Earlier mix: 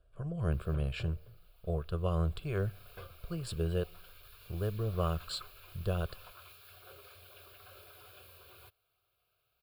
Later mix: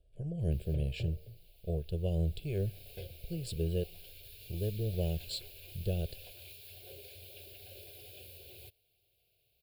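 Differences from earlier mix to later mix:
background +5.5 dB; master: add Butterworth band-stop 1.2 kHz, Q 0.63

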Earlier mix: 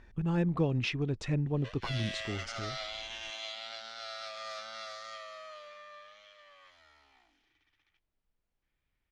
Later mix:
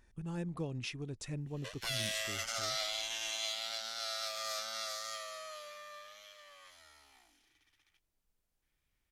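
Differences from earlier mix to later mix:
speech -10.0 dB; master: remove low-pass 3.4 kHz 12 dB/octave

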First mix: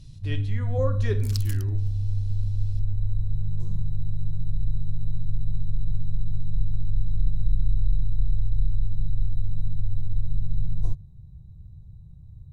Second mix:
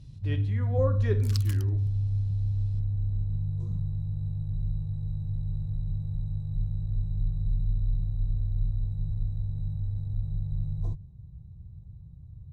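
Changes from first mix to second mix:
first sound: add high-pass 40 Hz; second sound +6.0 dB; master: add treble shelf 2.8 kHz -10.5 dB

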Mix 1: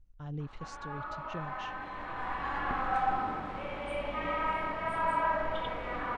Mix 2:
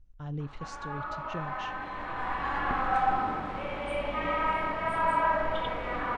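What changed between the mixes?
background +3.5 dB; reverb: on, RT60 0.45 s

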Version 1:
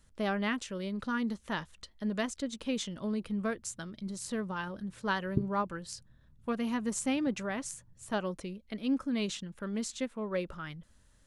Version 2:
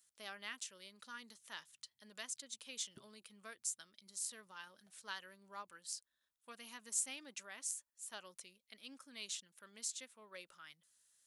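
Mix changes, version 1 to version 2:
background: entry -2.40 s; master: add differentiator

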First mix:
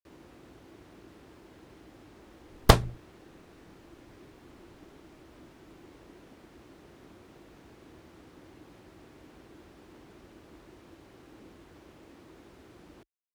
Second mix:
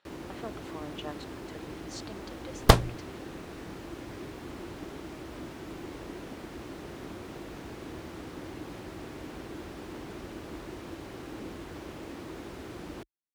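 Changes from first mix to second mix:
speech: unmuted; first sound +11.5 dB

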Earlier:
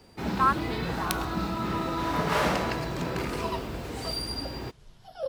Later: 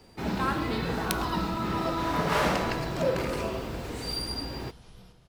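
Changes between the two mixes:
speech: add peaking EQ 1.2 kHz -15 dB 0.72 oct; second sound: entry -2.20 s; reverb: on

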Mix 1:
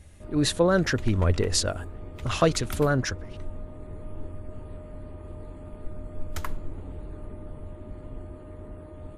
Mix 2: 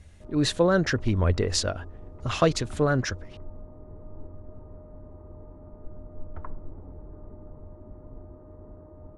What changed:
background: add four-pole ladder low-pass 1.4 kHz, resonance 20%; master: add low-pass 7.2 kHz 12 dB/octave

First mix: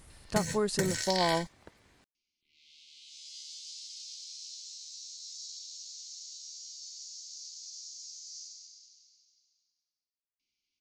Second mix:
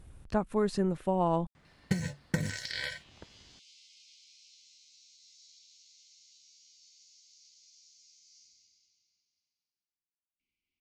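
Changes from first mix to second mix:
first sound: entry +1.55 s; second sound: add resonant high shelf 3.2 kHz -6 dB, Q 1.5; master: add tone controls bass +5 dB, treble -10 dB

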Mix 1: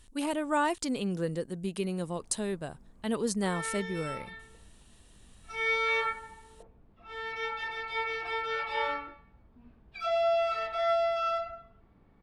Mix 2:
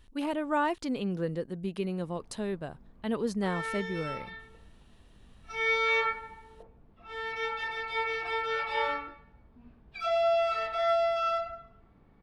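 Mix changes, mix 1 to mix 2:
speech: add peaking EQ 8.5 kHz -15 dB 1.2 oct; background: send +8.5 dB

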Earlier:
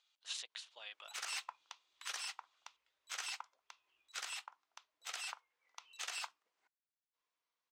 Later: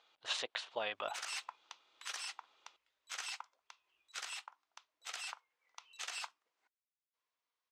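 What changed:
speech: remove differentiator; master: add Bessel low-pass 12 kHz, order 2

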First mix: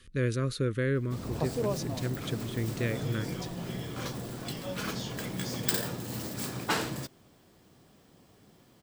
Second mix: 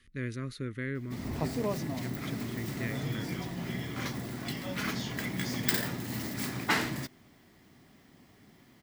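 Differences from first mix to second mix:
speech -8.0 dB; master: add graphic EQ with 31 bands 250 Hz +5 dB, 500 Hz -7 dB, 2 kHz +10 dB, 8 kHz -4 dB

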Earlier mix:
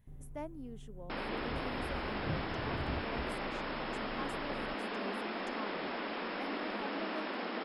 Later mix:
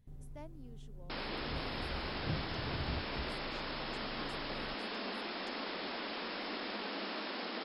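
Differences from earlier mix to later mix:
speech -8.5 dB; second sound -3.5 dB; master: add peaking EQ 4.5 kHz +11 dB 1 oct

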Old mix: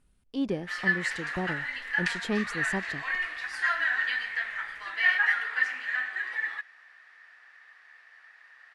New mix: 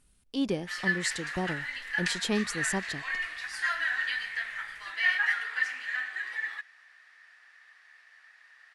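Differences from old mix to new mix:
background -5.5 dB; master: add treble shelf 3.1 kHz +11.5 dB

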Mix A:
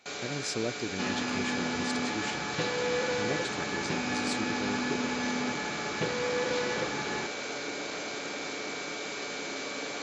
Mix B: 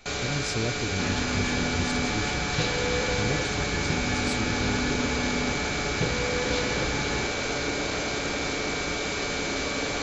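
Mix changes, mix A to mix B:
first sound +7.0 dB; master: remove high-pass 230 Hz 12 dB/octave

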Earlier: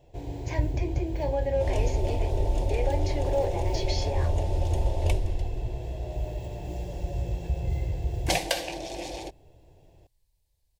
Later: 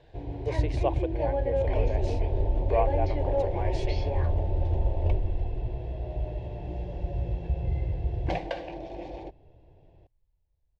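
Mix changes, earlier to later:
speech: unmuted; first sound: add distance through air 290 m; second sound: add tape spacing loss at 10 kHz 44 dB

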